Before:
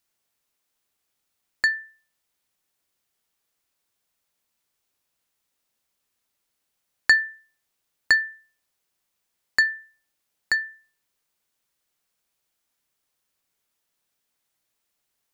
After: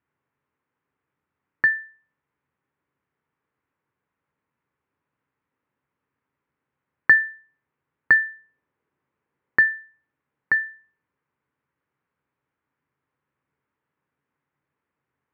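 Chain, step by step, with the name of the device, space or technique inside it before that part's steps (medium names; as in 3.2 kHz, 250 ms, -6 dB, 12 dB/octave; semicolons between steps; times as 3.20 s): 8.12–9.69 s: peaking EQ 380 Hz +4.5 dB 1.6 oct; bass cabinet (cabinet simulation 75–2000 Hz, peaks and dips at 80 Hz +7 dB, 140 Hz +10 dB, 270 Hz +5 dB, 430 Hz +3 dB, 680 Hz -7 dB, 1 kHz +3 dB); trim +4 dB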